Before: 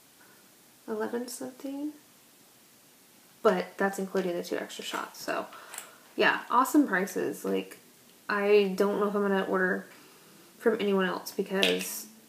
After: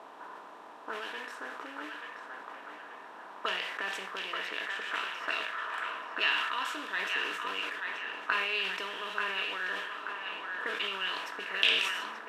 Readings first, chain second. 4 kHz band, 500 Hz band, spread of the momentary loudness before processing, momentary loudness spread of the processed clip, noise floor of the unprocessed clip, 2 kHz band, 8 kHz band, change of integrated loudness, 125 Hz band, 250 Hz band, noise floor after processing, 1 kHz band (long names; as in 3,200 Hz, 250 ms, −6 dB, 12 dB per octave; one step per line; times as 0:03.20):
+4.5 dB, −15.5 dB, 14 LU, 17 LU, −58 dBFS, +1.5 dB, −10.0 dB, −4.0 dB, below −20 dB, −20.0 dB, −49 dBFS, −3.5 dB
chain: compressor on every frequency bin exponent 0.6
envelope filter 750–2,800 Hz, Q 2.3, up, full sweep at −21 dBFS
on a send: feedback echo with a band-pass in the loop 883 ms, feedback 46%, band-pass 1,500 Hz, level −3 dB
on the sum: level that may fall only so fast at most 38 dB per second